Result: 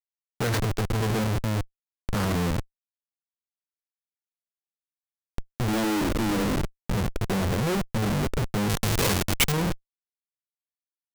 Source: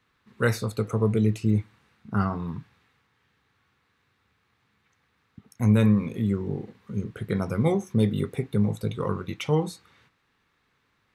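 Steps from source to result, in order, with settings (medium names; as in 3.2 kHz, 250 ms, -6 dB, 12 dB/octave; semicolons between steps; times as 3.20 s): 5.68–6.56 s: frequency shift +110 Hz; Schmitt trigger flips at -33 dBFS; 8.69–9.52 s: treble shelf 2.3 kHz +11.5 dB; trim +3 dB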